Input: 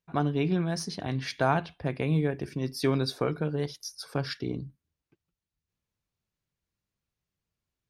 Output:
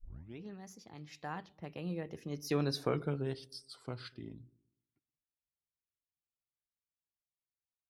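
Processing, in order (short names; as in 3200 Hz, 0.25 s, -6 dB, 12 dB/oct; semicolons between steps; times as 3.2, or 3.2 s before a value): tape start at the beginning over 0.48 s; Doppler pass-by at 2.88, 42 m/s, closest 18 m; dark delay 0.122 s, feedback 39%, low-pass 460 Hz, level -19 dB; gain -4.5 dB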